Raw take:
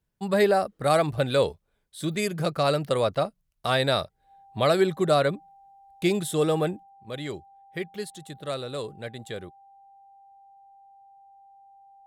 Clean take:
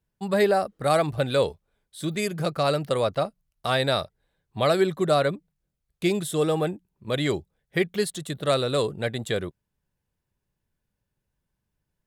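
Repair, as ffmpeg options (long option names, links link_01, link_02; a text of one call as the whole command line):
ffmpeg -i in.wav -af "bandreject=frequency=790:width=30,asetnsamples=nb_out_samples=441:pad=0,asendcmd='6.83 volume volume 9dB',volume=0dB" out.wav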